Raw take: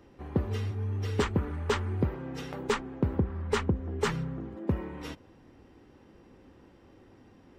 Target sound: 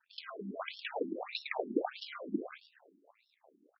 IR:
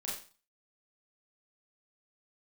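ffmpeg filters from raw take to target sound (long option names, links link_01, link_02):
-filter_complex "[0:a]asplit=2[link_01][link_02];[link_02]aecho=0:1:215|430|645|860|1075:0.376|0.177|0.083|0.039|0.0183[link_03];[link_01][link_03]amix=inputs=2:normalize=0,flanger=delay=2.3:depth=8.5:regen=-86:speed=0.5:shape=triangular,equalizer=frequency=350:width=1.5:gain=3,acrossover=split=1800[link_04][link_05];[link_04]aeval=exprs='sgn(val(0))*max(abs(val(0))-0.00133,0)':channel_layout=same[link_06];[link_06][link_05]amix=inputs=2:normalize=0,asetrate=88200,aresample=44100,lowshelf=frequency=470:gain=-9.5,acrusher=samples=40:mix=1:aa=0.000001:lfo=1:lforange=24:lforate=0.55,bandreject=frequency=84.92:width_type=h:width=4,bandreject=frequency=169.84:width_type=h:width=4,bandreject=frequency=254.76:width_type=h:width=4,bandreject=frequency=339.68:width_type=h:width=4,bandreject=frequency=424.6:width_type=h:width=4,afftfilt=real='re*between(b*sr/1024,260*pow(4000/260,0.5+0.5*sin(2*PI*1.6*pts/sr))/1.41,260*pow(4000/260,0.5+0.5*sin(2*PI*1.6*pts/sr))*1.41)':imag='im*between(b*sr/1024,260*pow(4000/260,0.5+0.5*sin(2*PI*1.6*pts/sr))/1.41,260*pow(4000/260,0.5+0.5*sin(2*PI*1.6*pts/sr))*1.41)':win_size=1024:overlap=0.75,volume=9dB"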